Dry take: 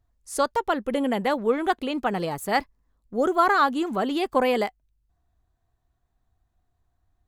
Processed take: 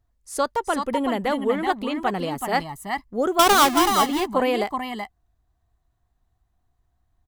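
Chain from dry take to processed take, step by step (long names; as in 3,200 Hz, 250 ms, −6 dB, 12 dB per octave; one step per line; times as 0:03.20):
0:03.39–0:03.88: each half-wave held at its own peak
multi-tap delay 377/378 ms −7/−8.5 dB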